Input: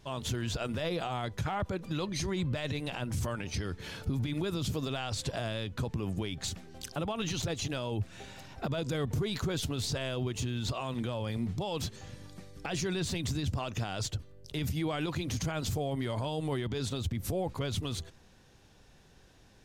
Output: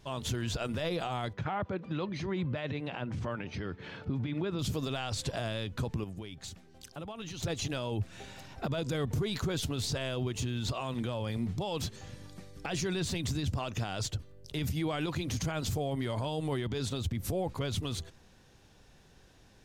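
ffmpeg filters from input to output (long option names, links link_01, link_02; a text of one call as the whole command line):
ffmpeg -i in.wav -filter_complex "[0:a]asettb=1/sr,asplit=3[link_01][link_02][link_03];[link_01]atrim=end=1.334[link_04];[link_02]atrim=start=1.33:end=4.59,asetpts=PTS-STARTPTS,afade=type=in:duration=0.004:curve=qsin,afade=type=out:start_time=3.256:duration=0.004:curve=qsin,highpass=110,lowpass=2700[link_05];[link_03]atrim=start=4.586[link_06];[link_04][link_05]acrossfade=duration=0.004:curve1=hsin:curve2=qsin[link_07];[link_07][link_06]acrossfade=duration=0.004:curve1=qsin:curve2=hsin,asplit=3[link_08][link_09][link_10];[link_08]atrim=end=6.042[link_11];[link_09]atrim=start=6.038:end=7.422,asetpts=PTS-STARTPTS,volume=-8dB[link_12];[link_10]atrim=start=7.418[link_13];[link_11][link_12]acrossfade=duration=0.004:curve1=hsin:curve2=hsin[link_14];[link_14][link_13]acrossfade=duration=0.004:curve1=hsin:curve2=hsin" out.wav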